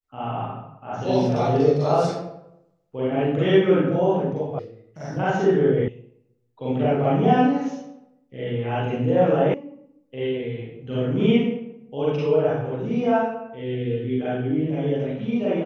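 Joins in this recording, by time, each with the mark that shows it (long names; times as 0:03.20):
0:04.59: cut off before it has died away
0:05.88: cut off before it has died away
0:09.54: cut off before it has died away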